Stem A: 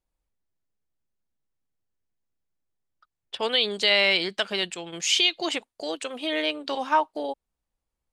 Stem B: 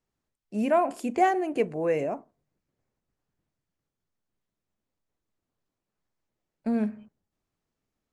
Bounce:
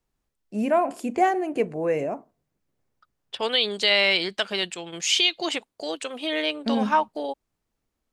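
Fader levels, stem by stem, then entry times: +0.5, +1.5 decibels; 0.00, 0.00 seconds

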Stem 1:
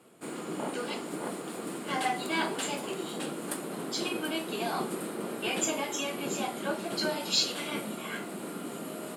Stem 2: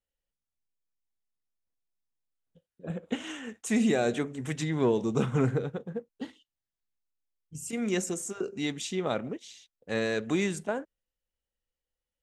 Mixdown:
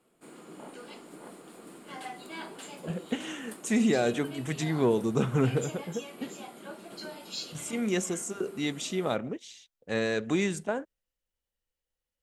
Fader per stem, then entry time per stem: −11.0, +0.5 decibels; 0.00, 0.00 seconds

